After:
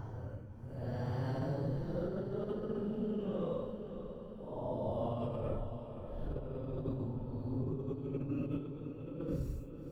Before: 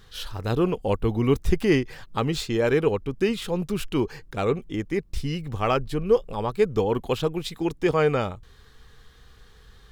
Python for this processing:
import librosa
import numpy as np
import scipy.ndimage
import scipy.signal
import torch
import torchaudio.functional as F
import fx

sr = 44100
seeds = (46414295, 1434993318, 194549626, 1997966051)

p1 = fx.doppler_pass(x, sr, speed_mps=46, closest_m=3.3, pass_at_s=3.17)
p2 = fx.tilt_shelf(p1, sr, db=6.5, hz=970.0)
p3 = fx.paulstretch(p2, sr, seeds[0], factor=11.0, window_s=0.05, from_s=0.32)
p4 = fx.over_compress(p3, sr, threshold_db=-50.0, ratio=-0.5)
p5 = p4 + fx.echo_diffused(p4, sr, ms=554, feedback_pct=59, wet_db=-9, dry=0)
y = p5 * librosa.db_to_amplitude(13.0)